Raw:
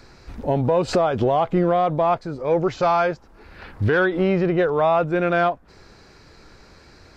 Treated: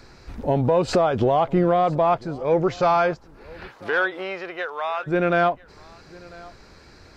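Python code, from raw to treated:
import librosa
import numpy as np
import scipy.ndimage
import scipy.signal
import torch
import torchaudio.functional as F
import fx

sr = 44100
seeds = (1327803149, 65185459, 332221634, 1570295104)

y = fx.highpass(x, sr, hz=fx.line((3.67, 470.0), (5.06, 1400.0)), slope=12, at=(3.67, 5.06), fade=0.02)
y = y + 10.0 ** (-23.0 / 20.0) * np.pad(y, (int(996 * sr / 1000.0), 0))[:len(y)]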